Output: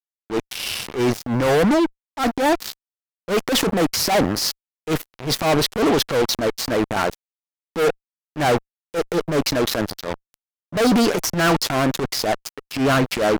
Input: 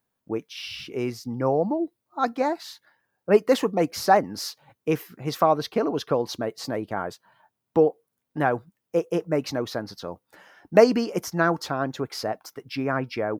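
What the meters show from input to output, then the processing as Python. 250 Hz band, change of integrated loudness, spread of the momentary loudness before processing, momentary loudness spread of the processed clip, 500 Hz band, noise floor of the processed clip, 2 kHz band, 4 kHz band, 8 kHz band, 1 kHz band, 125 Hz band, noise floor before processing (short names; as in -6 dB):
+6.5 dB, +4.5 dB, 14 LU, 10 LU, +2.5 dB, under -85 dBFS, +7.0 dB, +11.5 dB, +12.5 dB, +3.0 dB, +6.5 dB, -81 dBFS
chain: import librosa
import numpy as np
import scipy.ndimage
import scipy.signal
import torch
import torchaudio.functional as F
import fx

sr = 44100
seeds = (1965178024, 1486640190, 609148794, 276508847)

y = fx.fuzz(x, sr, gain_db=32.0, gate_db=-36.0)
y = fx.transient(y, sr, attack_db=-11, sustain_db=4)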